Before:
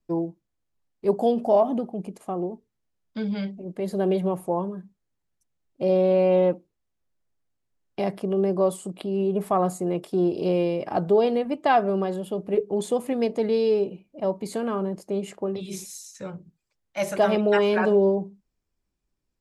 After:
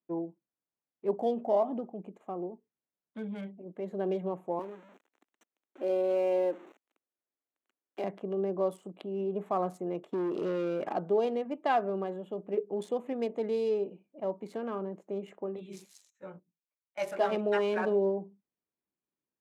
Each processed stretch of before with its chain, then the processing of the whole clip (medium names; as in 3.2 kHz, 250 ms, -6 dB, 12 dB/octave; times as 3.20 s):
4.59–8.04 s: jump at every zero crossing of -36 dBFS + Chebyshev high-pass 270 Hz, order 3
10.11–10.93 s: steep low-pass 7.9 kHz + waveshaping leveller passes 2 + compression 4:1, threshold -21 dBFS
16.10–17.31 s: doubling 17 ms -5 dB + gate -38 dBFS, range -13 dB + peaking EQ 130 Hz -5 dB 2.6 oct
whole clip: local Wiener filter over 9 samples; high-pass 210 Hz 12 dB/octave; treble shelf 9.2 kHz -7 dB; trim -7.5 dB